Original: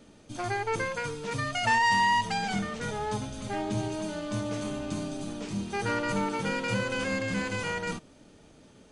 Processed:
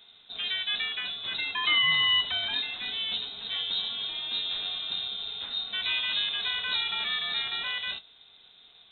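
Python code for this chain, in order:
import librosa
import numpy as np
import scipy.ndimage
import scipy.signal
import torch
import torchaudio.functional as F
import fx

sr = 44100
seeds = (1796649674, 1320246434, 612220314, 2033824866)

y = fx.low_shelf(x, sr, hz=65.0, db=-10.0)
y = fx.doubler(y, sr, ms=24.0, db=-13)
y = fx.freq_invert(y, sr, carrier_hz=3900)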